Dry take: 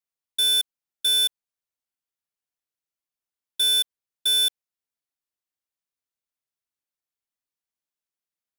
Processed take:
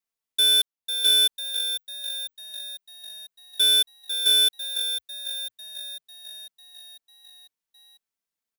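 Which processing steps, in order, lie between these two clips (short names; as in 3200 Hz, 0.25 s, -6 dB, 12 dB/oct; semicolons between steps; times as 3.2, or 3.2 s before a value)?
0.56–1.13 sample leveller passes 5; comb 4.5 ms, depth 65%; frequency-shifting echo 0.498 s, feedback 59%, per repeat +48 Hz, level -9 dB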